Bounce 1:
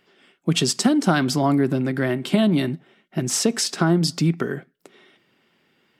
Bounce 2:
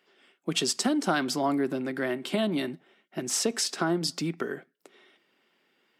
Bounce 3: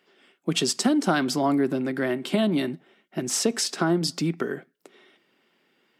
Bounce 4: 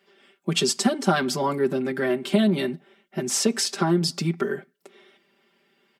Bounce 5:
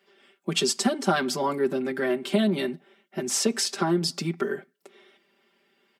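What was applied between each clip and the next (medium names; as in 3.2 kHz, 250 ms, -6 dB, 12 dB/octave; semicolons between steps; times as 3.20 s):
high-pass 280 Hz 12 dB/octave; trim -5 dB
bass shelf 290 Hz +5.5 dB; trim +2 dB
comb 5.1 ms, depth 97%; trim -1.5 dB
high-pass 180 Hz; trim -1.5 dB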